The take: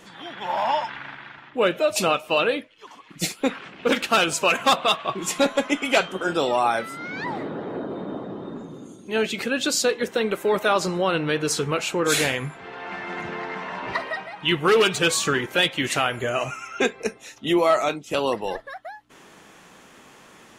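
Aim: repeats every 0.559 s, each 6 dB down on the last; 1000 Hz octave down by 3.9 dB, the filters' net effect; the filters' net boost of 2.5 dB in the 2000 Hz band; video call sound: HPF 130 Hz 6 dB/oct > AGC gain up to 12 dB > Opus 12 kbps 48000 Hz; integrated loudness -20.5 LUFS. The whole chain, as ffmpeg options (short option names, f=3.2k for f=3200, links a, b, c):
-af "highpass=f=130:p=1,equalizer=f=1k:t=o:g=-7,equalizer=f=2k:t=o:g=5.5,aecho=1:1:559|1118|1677|2236|2795|3354:0.501|0.251|0.125|0.0626|0.0313|0.0157,dynaudnorm=m=12dB,volume=1.5dB" -ar 48000 -c:a libopus -b:a 12k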